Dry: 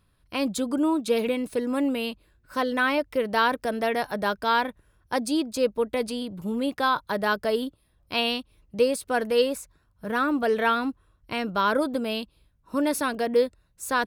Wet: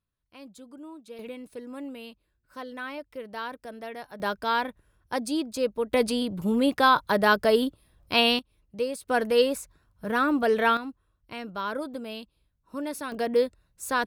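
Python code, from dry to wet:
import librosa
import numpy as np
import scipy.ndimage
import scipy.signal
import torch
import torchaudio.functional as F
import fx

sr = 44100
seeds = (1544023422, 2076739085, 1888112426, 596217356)

y = fx.gain(x, sr, db=fx.steps((0.0, -20.0), (1.19, -13.0), (4.2, -3.0), (5.92, 4.0), (8.39, -7.0), (9.09, 0.5), (10.77, -8.5), (13.12, -1.5)))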